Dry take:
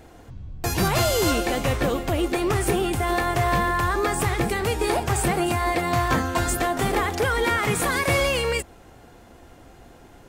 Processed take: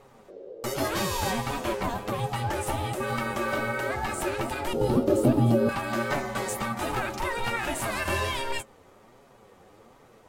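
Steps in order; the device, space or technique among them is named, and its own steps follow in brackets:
alien voice (ring modulation 470 Hz; flanger 1.3 Hz, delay 6.9 ms, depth 4.5 ms, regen +39%)
0:04.73–0:05.69: octave-band graphic EQ 125/250/500/1,000/2,000/8,000 Hz +7/+12/+9/−5/−11/−8 dB

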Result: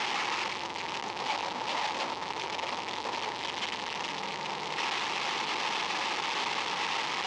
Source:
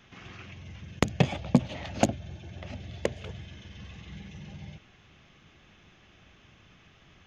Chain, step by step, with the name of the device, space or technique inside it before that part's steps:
low-pass filter 1,900 Hz 6 dB per octave
home computer beeper (sign of each sample alone; loudspeaker in its box 550–5,600 Hz, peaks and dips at 640 Hz −8 dB, 900 Hz +10 dB, 1,500 Hz −7 dB)
level +6.5 dB

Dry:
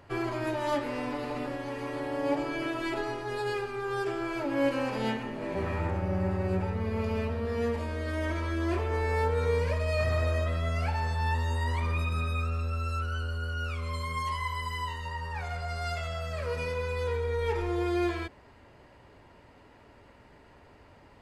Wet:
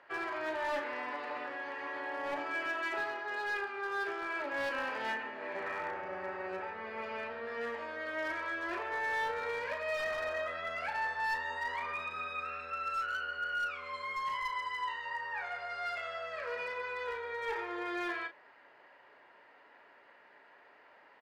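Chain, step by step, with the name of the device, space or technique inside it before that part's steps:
0:12.44–0:13.65: dynamic equaliser 2,100 Hz, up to +7 dB, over −54 dBFS, Q 1.6
megaphone (band-pass filter 560–3,400 Hz; parametric band 1,700 Hz +7 dB 0.57 octaves; hard clipping −28 dBFS, distortion −17 dB; double-tracking delay 35 ms −8.5 dB)
level −3 dB

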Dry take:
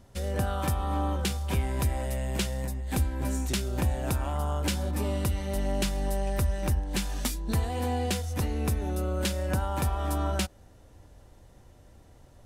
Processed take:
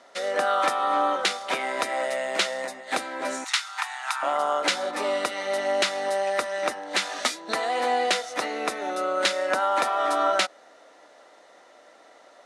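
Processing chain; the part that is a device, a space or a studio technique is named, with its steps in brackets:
0:03.44–0:04.23: Butterworth high-pass 820 Hz 72 dB per octave
phone speaker on a table (loudspeaker in its box 350–8,700 Hz, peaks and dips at 380 Hz −5 dB, 660 Hz +7 dB, 1,300 Hz +9 dB, 2,000 Hz +8 dB, 3,900 Hz +5 dB, 7,800 Hz −4 dB)
level +6.5 dB

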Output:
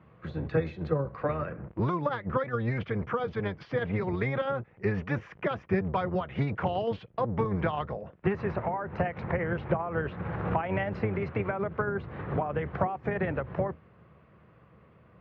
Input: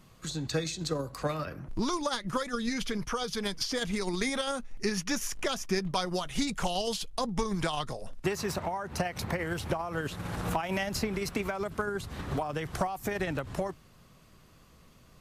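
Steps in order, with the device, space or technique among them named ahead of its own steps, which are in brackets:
sub-octave bass pedal (sub-octave generator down 1 octave, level +3 dB; loudspeaker in its box 84–2,200 Hz, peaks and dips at 90 Hz −6 dB, 260 Hz −8 dB, 500 Hz +4 dB)
level +1.5 dB

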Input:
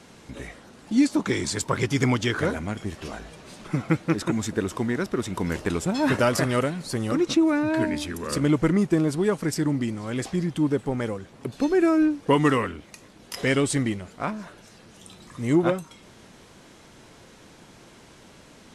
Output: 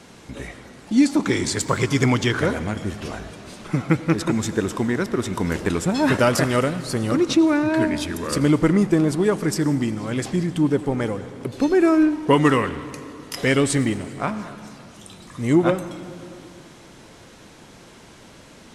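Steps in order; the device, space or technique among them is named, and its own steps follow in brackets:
saturated reverb return (on a send at −10.5 dB: convolution reverb RT60 2.2 s, pre-delay 77 ms + soft clipping −22 dBFS, distortion −10 dB)
on the sum: level +3.5 dB

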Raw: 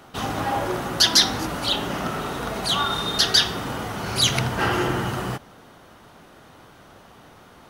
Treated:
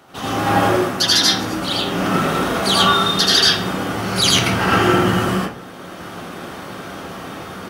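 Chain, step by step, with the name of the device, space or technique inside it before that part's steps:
far laptop microphone (convolution reverb RT60 0.40 s, pre-delay 78 ms, DRR −4 dB; high-pass filter 110 Hz 6 dB per octave; automatic gain control gain up to 13 dB)
level −1 dB

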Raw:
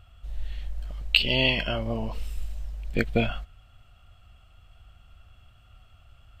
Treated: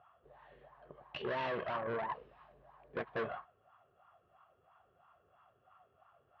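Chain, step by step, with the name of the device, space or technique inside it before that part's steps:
wah-wah guitar rig (LFO wah 3 Hz 420–1,000 Hz, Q 5.7; tube saturation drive 45 dB, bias 0.5; loudspeaker in its box 81–3,900 Hz, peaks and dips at 150 Hz +9 dB, 380 Hz +5 dB, 1,100 Hz +9 dB, 1,700 Hz +9 dB)
0:02.26–0:02.70: parametric band 470 Hz −8.5 dB 0.34 octaves
level +8.5 dB

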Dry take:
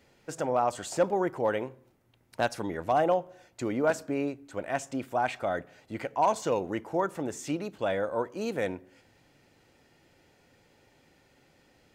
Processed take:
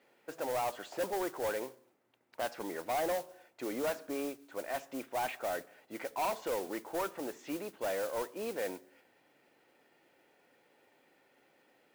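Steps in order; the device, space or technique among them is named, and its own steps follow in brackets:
carbon microphone (band-pass filter 320–3,000 Hz; soft clipping −26.5 dBFS, distortion −9 dB; noise that follows the level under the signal 13 dB)
level −2.5 dB

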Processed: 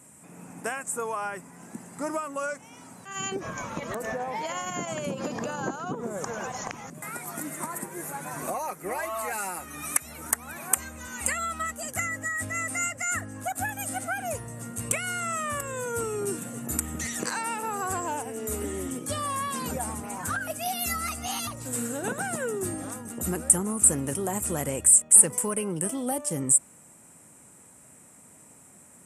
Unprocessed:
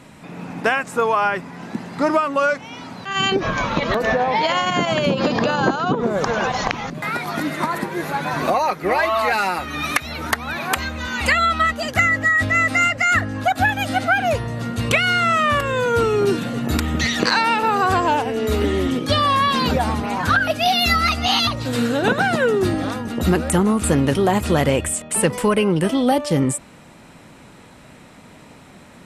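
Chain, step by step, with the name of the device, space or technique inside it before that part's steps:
budget condenser microphone (high-pass filter 68 Hz; high shelf with overshoot 5,900 Hz +14 dB, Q 3)
level −13 dB

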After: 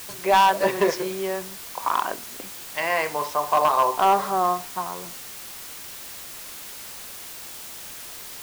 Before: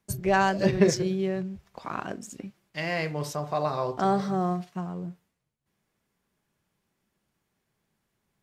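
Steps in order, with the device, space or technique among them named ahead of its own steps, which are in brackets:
drive-through speaker (band-pass filter 480–3,500 Hz; parametric band 990 Hz +11 dB 0.47 octaves; hard clipping −18 dBFS, distortion −10 dB; white noise bed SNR 13 dB)
level +6 dB

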